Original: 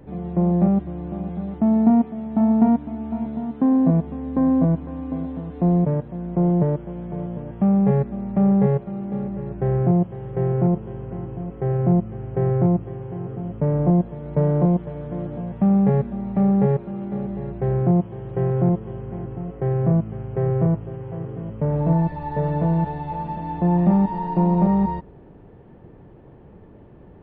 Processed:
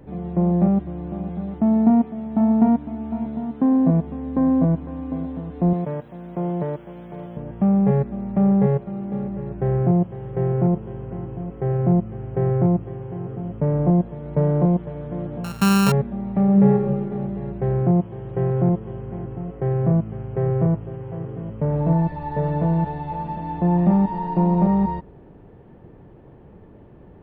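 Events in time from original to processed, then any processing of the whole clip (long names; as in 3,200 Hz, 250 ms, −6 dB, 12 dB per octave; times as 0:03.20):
0:05.73–0:07.37: spectral tilt +3 dB per octave
0:15.44–0:15.92: samples sorted by size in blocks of 32 samples
0:16.44–0:16.89: thrown reverb, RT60 1.7 s, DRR 2 dB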